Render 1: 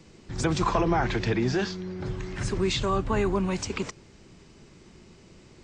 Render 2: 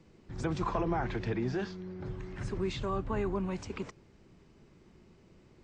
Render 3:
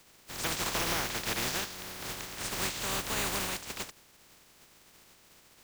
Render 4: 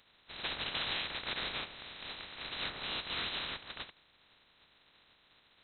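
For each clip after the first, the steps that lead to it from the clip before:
high shelf 3100 Hz -11 dB; gain -7 dB
spectral contrast lowered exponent 0.2
inverted band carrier 4000 Hz; gain -4 dB

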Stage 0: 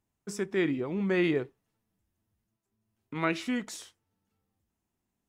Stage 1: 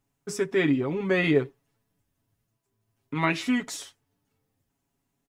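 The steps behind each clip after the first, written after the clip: comb 7.2 ms, depth 78%; gain +3.5 dB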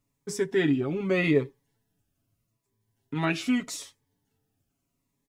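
cascading phaser falling 0.8 Hz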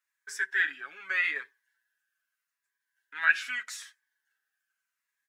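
resonant high-pass 1600 Hz, resonance Q 15; gain -5 dB

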